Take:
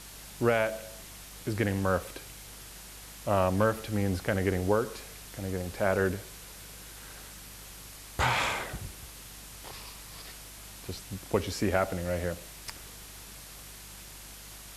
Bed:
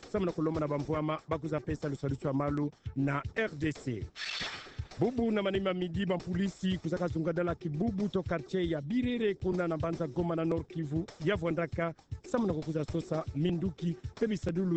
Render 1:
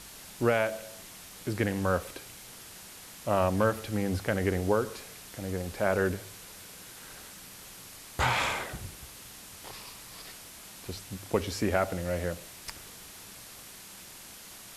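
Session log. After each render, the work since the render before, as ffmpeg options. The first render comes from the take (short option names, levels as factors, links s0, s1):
-af "bandreject=f=50:t=h:w=4,bandreject=f=100:t=h:w=4,bandreject=f=150:t=h:w=4"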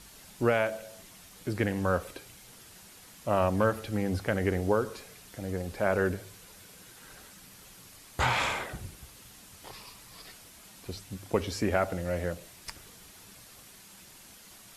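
-af "afftdn=nr=6:nf=-48"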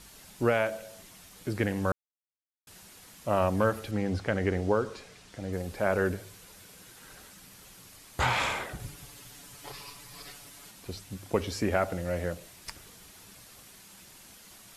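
-filter_complex "[0:a]asettb=1/sr,asplit=3[s0][s1][s2];[s0]atrim=end=3.914[s3];[s1]atrim=start=3.91:end=5.53,asetpts=PTS-STARTPTS,afade=t=in:d=0.004:c=qsin,afade=t=out:st=1.616:d=0.004:c=qsin,lowpass=6800[s4];[s2]atrim=start=5.526[s5];[s3][s4]acrossfade=d=0.004:c1=hsin:c2=qsin[s6];[s6][s5]acrossfade=d=0.004:c1=qsin:c2=hsin,asettb=1/sr,asplit=3[s7][s8][s9];[s7]atrim=end=8.794[s10];[s8]atrim=start=8.79:end=10.71,asetpts=PTS-STARTPTS,afade=t=in:d=0.004:c=qsin,afade=t=out:st=1.916:d=0.004:c=qsin,aecho=1:1:7:0.93,atrim=end_sample=84672[s11];[s9]atrim=start=10.706[s12];[s10][s11]acrossfade=d=0.004:c1=hsin:c2=qsin[s13];[s13][s12]acrossfade=d=0.004:c1=qsin:c2=hsin,asplit=3[s14][s15][s16];[s14]atrim=end=1.92,asetpts=PTS-STARTPTS,afade=t=out:st=1.916:d=0.004:c=hsin[s17];[s15]atrim=start=1.92:end=2.67,asetpts=PTS-STARTPTS,volume=0[s18];[s16]atrim=start=2.67,asetpts=PTS-STARTPTS,afade=t=in:d=0.004:c=hsin[s19];[s17][s18][s19]concat=n=3:v=0:a=1"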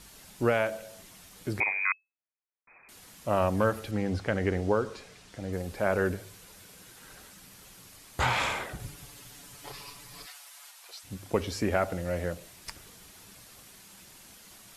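-filter_complex "[0:a]asettb=1/sr,asplit=3[s0][s1][s2];[s0]atrim=end=1.604[s3];[s1]atrim=start=1.6:end=2.89,asetpts=PTS-STARTPTS,afade=t=in:d=0.004:c=qsin,afade=t=out:st=1.286:d=0.004:c=qsin,lowpass=f=2200:t=q:w=0.5098,lowpass=f=2200:t=q:w=0.6013,lowpass=f=2200:t=q:w=0.9,lowpass=f=2200:t=q:w=2.563,afreqshift=-2600[s4];[s2]atrim=start=2.886[s5];[s3][s4]acrossfade=d=0.004:c1=hsin:c2=qsin[s6];[s6][s5]acrossfade=d=0.004:c1=qsin:c2=hsin,asplit=3[s7][s8][s9];[s7]afade=t=out:st=10.25:d=0.02[s10];[s8]highpass=f=730:w=0.5412,highpass=f=730:w=1.3066,afade=t=in:st=10.25:d=0.02,afade=t=out:st=11.03:d=0.02[s11];[s9]afade=t=in:st=11.03:d=0.02[s12];[s10][s11][s12]amix=inputs=3:normalize=0"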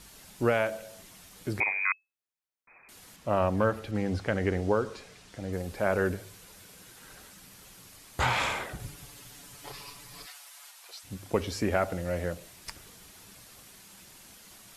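-filter_complex "[0:a]asettb=1/sr,asplit=3[s0][s1][s2];[s0]atrim=end=3.164[s3];[s1]atrim=start=3.16:end=3.95,asetpts=PTS-STARTPTS,afade=t=in:d=0.004:c=qsin,afade=t=out:st=0.786:d=0.004:c=qsin,lowpass=f=3700:p=1[s4];[s2]atrim=start=3.946[s5];[s3][s4]acrossfade=d=0.004:c1=hsin:c2=qsin[s6];[s6][s5]acrossfade=d=0.004:c1=qsin:c2=hsin"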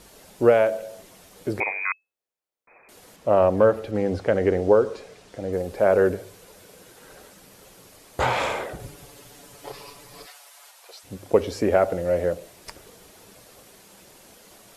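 -af "equalizer=f=500:w=0.93:g=11.5"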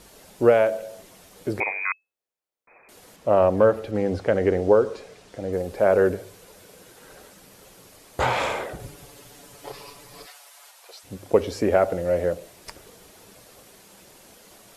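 -af anull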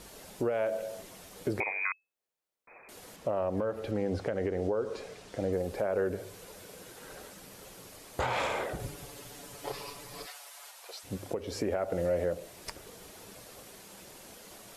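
-af "acompressor=threshold=0.1:ratio=6,alimiter=limit=0.0891:level=0:latency=1:release=352"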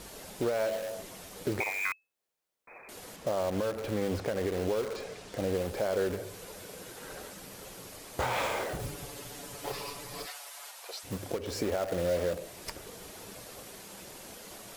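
-filter_complex "[0:a]asplit=2[s0][s1];[s1]aeval=exprs='(mod(50.1*val(0)+1,2)-1)/50.1':c=same,volume=0.473[s2];[s0][s2]amix=inputs=2:normalize=0,acrusher=bits=8:mode=log:mix=0:aa=0.000001"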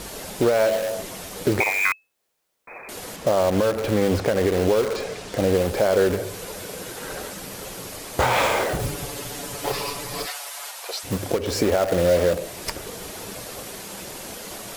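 -af "volume=3.55"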